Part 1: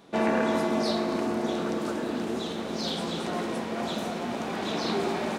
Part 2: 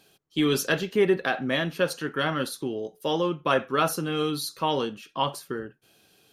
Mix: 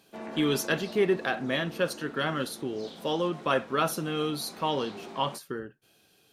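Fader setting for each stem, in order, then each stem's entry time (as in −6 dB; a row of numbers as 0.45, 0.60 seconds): −15.0, −3.0 decibels; 0.00, 0.00 seconds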